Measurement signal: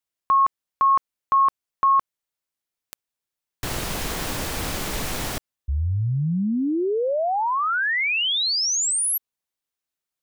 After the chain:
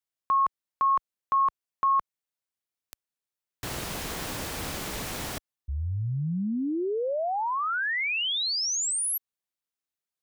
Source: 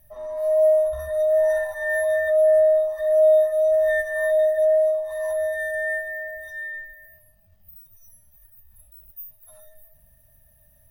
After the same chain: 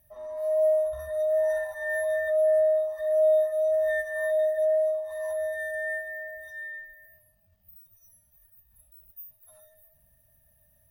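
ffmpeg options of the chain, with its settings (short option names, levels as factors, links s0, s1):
-af "highpass=f=51:p=1,volume=0.531"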